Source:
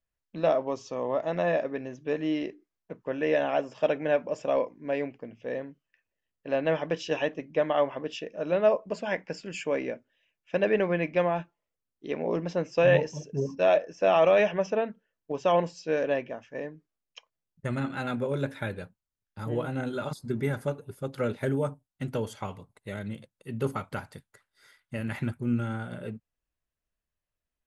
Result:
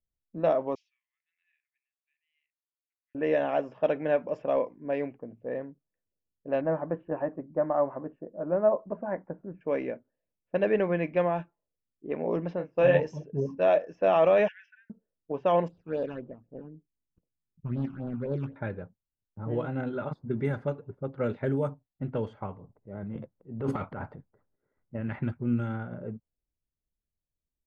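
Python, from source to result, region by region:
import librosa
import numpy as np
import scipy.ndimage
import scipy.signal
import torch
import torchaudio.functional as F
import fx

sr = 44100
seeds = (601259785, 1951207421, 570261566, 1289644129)

y = fx.chain(x, sr, fx.steep_highpass(hz=2200.0, slope=48),
    fx.high_shelf(hz=4400.0, db=-3.0), at=(0.75, 3.15))
y = fx.chain(y, sr, fx.lowpass(hz=1400.0, slope=24),
    fx.notch(hz=450.0, q=6.7), at=(6.61, 9.61))
y = fx.chain(y, sr, fx.doubler(ms=33.0, db=-6),
    fx.upward_expand(threshold_db=-37.0, expansion=1.5), at=(12.56, 13.0))
y = fx.chain(y, sr, fx.brickwall_highpass(low_hz=1400.0),
    fx.high_shelf(hz=3500.0, db=-10.0), at=(14.48, 14.9))
y = fx.chain(y, sr, fx.median_filter(points=41),
    fx.high_shelf(hz=4100.0, db=5.5),
    fx.phaser_stages(stages=8, low_hz=530.0, high_hz=2200.0, hz=3.9, feedback_pct=25), at=(15.68, 18.56))
y = fx.chain(y, sr, fx.peak_eq(hz=63.0, db=-3.5, octaves=2.1),
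    fx.transient(attack_db=-6, sustain_db=11), at=(22.53, 24.95))
y = fx.lowpass(y, sr, hz=1700.0, slope=6)
y = fx.env_lowpass(y, sr, base_hz=390.0, full_db=-23.0)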